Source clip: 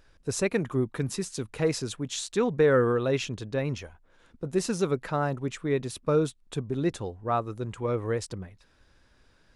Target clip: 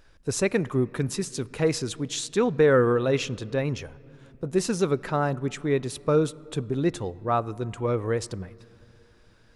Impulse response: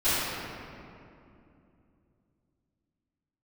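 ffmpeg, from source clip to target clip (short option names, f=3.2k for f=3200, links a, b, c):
-filter_complex "[0:a]asplit=2[a][b];[1:a]atrim=start_sample=2205,highshelf=f=8k:g=-10[c];[b][c]afir=irnorm=-1:irlink=0,volume=-35.5dB[d];[a][d]amix=inputs=2:normalize=0,volume=2.5dB"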